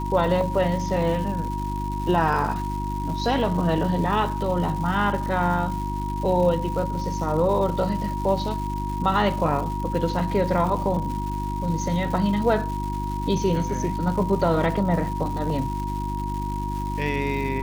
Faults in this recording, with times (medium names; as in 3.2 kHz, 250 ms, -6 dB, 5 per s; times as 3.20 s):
crackle 370 per s -32 dBFS
hum 50 Hz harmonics 7 -29 dBFS
whine 950 Hz -30 dBFS